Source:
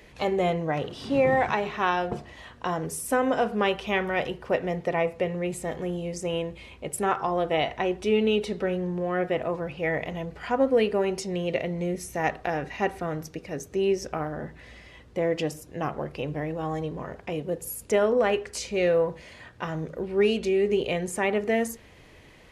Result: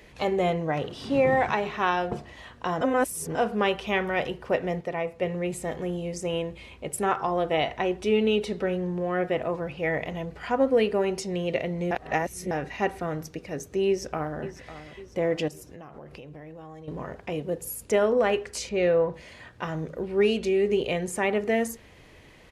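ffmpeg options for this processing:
ffmpeg -i in.wav -filter_complex "[0:a]asplit=2[link_01][link_02];[link_02]afade=type=in:start_time=13.87:duration=0.01,afade=type=out:start_time=14.38:duration=0.01,aecho=0:1:550|1100|1650|2200|2750:0.211349|0.105674|0.0528372|0.0264186|0.0132093[link_03];[link_01][link_03]amix=inputs=2:normalize=0,asettb=1/sr,asplit=3[link_04][link_05][link_06];[link_04]atrim=end=15.484[link_07];[link_05]atrim=start=15.48:end=16.88,asetpts=PTS-STARTPTS,afade=type=in:duration=0.004:curve=qsin,afade=type=out:start_time=1.396:duration=0.004:curve=qsin,acompressor=threshold=-39dB:ratio=16:attack=3.2:release=140:knee=1:detection=peak[link_08];[link_06]atrim=start=16.876[link_09];[link_07][link_08]acrossfade=duration=0.004:curve1=hsin:curve2=qsin[link_10];[link_10][link_09]acrossfade=duration=0.004:curve1=qsin:curve2=hsin,asettb=1/sr,asplit=3[link_11][link_12][link_13];[link_11]atrim=end=18.694[link_14];[link_12]atrim=start=18.69:end=19.14,asetpts=PTS-STARTPTS,afade=type=in:duration=0.004:curve=qsin,afade=type=out:start_time=0.446:duration=0.004:curve=qsin,aemphasis=mode=reproduction:type=50fm[link_15];[link_13]atrim=start=19.136[link_16];[link_14][link_15]acrossfade=duration=0.004:curve1=hsin:curve2=qsin[link_17];[link_17][link_16]acrossfade=duration=0.004:curve1=qsin:curve2=hsin,asplit=7[link_18][link_19][link_20][link_21][link_22][link_23][link_24];[link_18]atrim=end=2.812[link_25];[link_19]atrim=start=2.808:end=3.352,asetpts=PTS-STARTPTS,areverse[link_26];[link_20]atrim=start=3.348:end=4.812[link_27];[link_21]atrim=start=4.808:end=5.222,asetpts=PTS-STARTPTS,volume=-4.5dB[link_28];[link_22]atrim=start=5.218:end=11.912[link_29];[link_23]atrim=start=11.908:end=12.512,asetpts=PTS-STARTPTS,areverse[link_30];[link_24]atrim=start=12.508[link_31];[link_25][link_26]acrossfade=duration=0.004:curve1=hsin:curve2=hsin[link_32];[link_32][link_27]acrossfade=duration=0.004:curve1=hsin:curve2=hsin[link_33];[link_33][link_28]acrossfade=duration=0.004:curve1=hsin:curve2=hsin[link_34];[link_34][link_29]acrossfade=duration=0.004:curve1=hsin:curve2=hsin[link_35];[link_35][link_30]acrossfade=duration=0.004:curve1=hsin:curve2=hsin[link_36];[link_36][link_31]acrossfade=duration=0.004:curve1=hsin:curve2=hsin" out.wav

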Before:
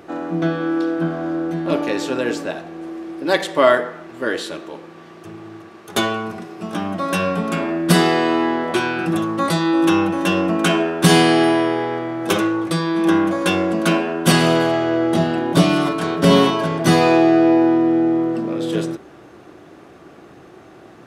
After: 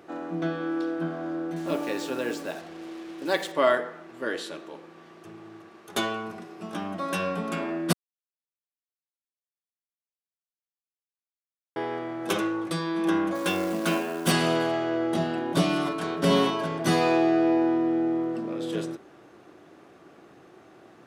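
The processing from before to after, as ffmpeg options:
ffmpeg -i in.wav -filter_complex "[0:a]asettb=1/sr,asplit=3[link_01][link_02][link_03];[link_01]atrim=end=1.564[link_04];[link_02]atrim=start=1.56:end=3.52,asetpts=PTS-STARTPTS,afade=type=in:duration=0.004:curve=qsin,afade=type=out:start_time=1.956:duration=0.004:curve=qsin,acrusher=bits=5:mix=0:aa=0.5[link_05];[link_03]atrim=start=3.516[link_06];[link_04][link_05]acrossfade=duration=0.004:curve1=hsin:curve2=qsin[link_07];[link_07][link_06]acrossfade=duration=0.004:curve1=qsin:curve2=hsin,asplit=3[link_08][link_09][link_10];[link_08]afade=type=out:start_time=13.34:duration=0.02[link_11];[link_09]acrusher=bits=4:mode=log:mix=0:aa=0.000001,afade=type=in:start_time=13.34:duration=0.02,afade=type=out:start_time=14.3:duration=0.02[link_12];[link_10]afade=type=in:start_time=14.3:duration=0.02[link_13];[link_11][link_12][link_13]amix=inputs=3:normalize=0,asplit=3[link_14][link_15][link_16];[link_14]atrim=end=7.93,asetpts=PTS-STARTPTS,afade=type=out:start_time=7.926:duration=0.004:curve=hsin[link_17];[link_15]atrim=start=7.93:end=11.76,asetpts=PTS-STARTPTS,volume=0[link_18];[link_16]atrim=start=11.76,asetpts=PTS-STARTPTS,afade=type=in:duration=0.004:curve=hsin[link_19];[link_17][link_18][link_19]concat=n=3:v=0:a=1,lowshelf=frequency=84:gain=-11.5,volume=-8dB" out.wav

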